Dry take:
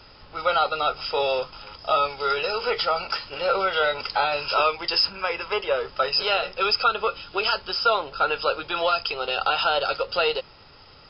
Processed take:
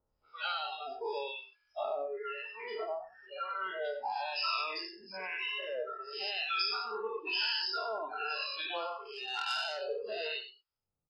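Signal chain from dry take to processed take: every event in the spectrogram widened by 240 ms; 2.03–3.85 s: low-pass 2 kHz 12 dB/octave; reverb removal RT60 1.5 s; hum notches 50/100/150/200/250/300/350/400 Hz; spectral noise reduction 27 dB; compression, threshold -20 dBFS, peak gain reduction 8.5 dB; harmonic tremolo 1 Hz, depth 100%, crossover 1 kHz; on a send: delay 95 ms -13 dB; 9.13–9.81 s: on the sum: transformer saturation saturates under 2.4 kHz; trim -7 dB

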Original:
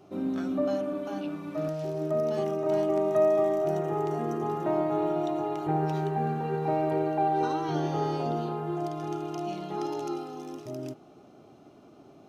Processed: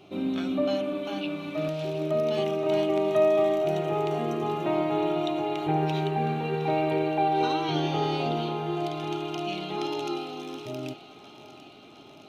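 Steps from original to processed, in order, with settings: high-order bell 3 kHz +11.5 dB 1.1 oct; on a send: thinning echo 714 ms, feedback 71%, high-pass 570 Hz, level -14 dB; on the sum: trim +1.5 dB

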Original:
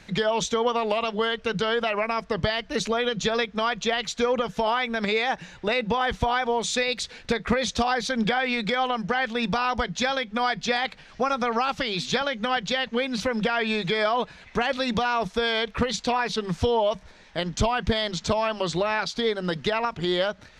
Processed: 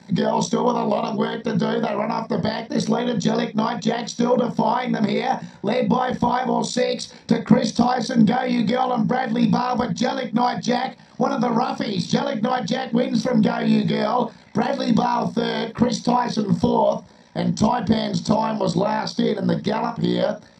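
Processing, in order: AM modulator 60 Hz, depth 80%; reverberation, pre-delay 3 ms, DRR 3 dB; trim -2.5 dB

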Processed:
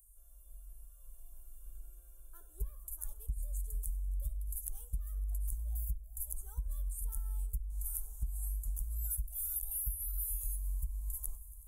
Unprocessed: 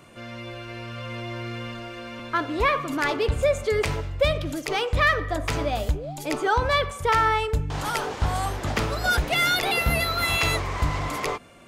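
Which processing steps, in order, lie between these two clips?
inverse Chebyshev band-stop 110–5000 Hz, stop band 50 dB; multi-head delay 93 ms, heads first and third, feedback 75%, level -23 dB; compression 10:1, threshold -42 dBFS, peak gain reduction 15.5 dB; 1.66–2.74 s: small resonant body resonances 400/1500/2300 Hz, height 18 dB, ringing for 65 ms; trim +9 dB

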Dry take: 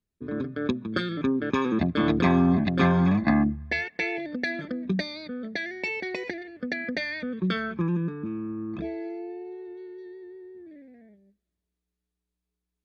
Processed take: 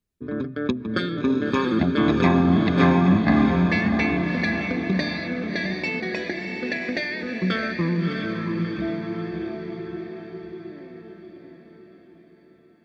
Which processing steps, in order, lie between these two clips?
echo that smears into a reverb 659 ms, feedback 52%, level -4 dB; trim +2.5 dB

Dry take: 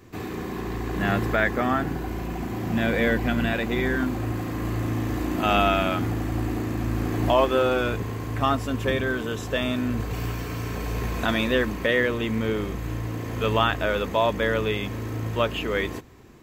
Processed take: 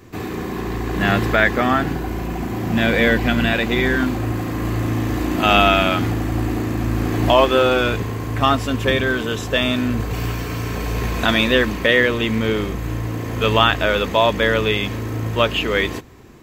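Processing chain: dynamic bell 3.5 kHz, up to +5 dB, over -41 dBFS, Q 0.76; trim +5.5 dB

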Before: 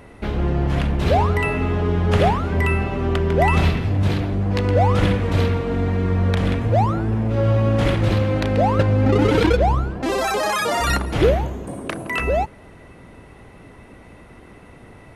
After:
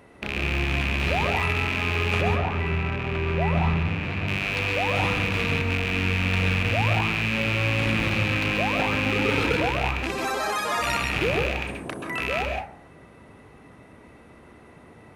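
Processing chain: rattle on loud lows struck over -25 dBFS, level -8 dBFS; high-pass 140 Hz 6 dB/octave; dynamic bell 460 Hz, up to -4 dB, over -28 dBFS, Q 0.76; 2.21–4.27 s: low-pass 1.3 kHz 6 dB/octave; plate-style reverb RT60 0.52 s, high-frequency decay 0.4×, pre-delay 120 ms, DRR 1 dB; trim -6.5 dB

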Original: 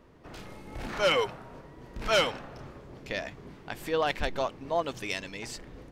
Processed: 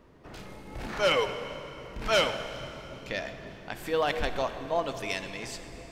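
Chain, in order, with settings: plate-style reverb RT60 3.4 s, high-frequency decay 0.9×, DRR 8.5 dB

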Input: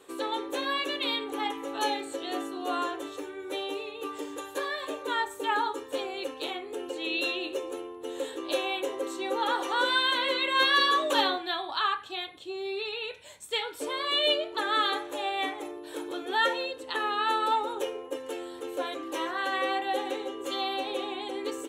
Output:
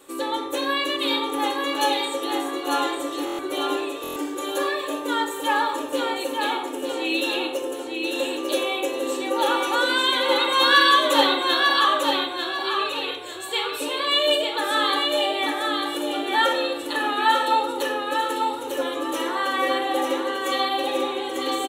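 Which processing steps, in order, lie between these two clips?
treble shelf 9.4 kHz +10.5 dB; feedback delay 896 ms, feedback 32%, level -4 dB; reverberation RT60 0.85 s, pre-delay 3 ms, DRR 2.5 dB; buffer glitch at 3.25/4.02 s, samples 1024, times 5; trim +2.5 dB

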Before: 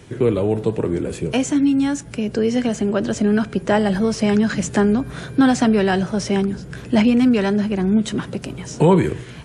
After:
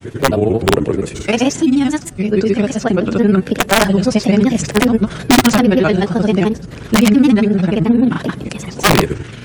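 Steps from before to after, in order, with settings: integer overflow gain 7.5 dB; granulator 73 ms, grains 23 per s, pitch spread up and down by 3 st; trim +6.5 dB

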